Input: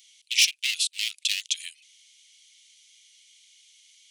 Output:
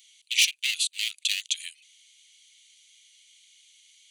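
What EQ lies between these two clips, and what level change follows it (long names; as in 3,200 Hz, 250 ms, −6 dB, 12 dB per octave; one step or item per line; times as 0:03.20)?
notch filter 5,300 Hz, Q 5.3
0.0 dB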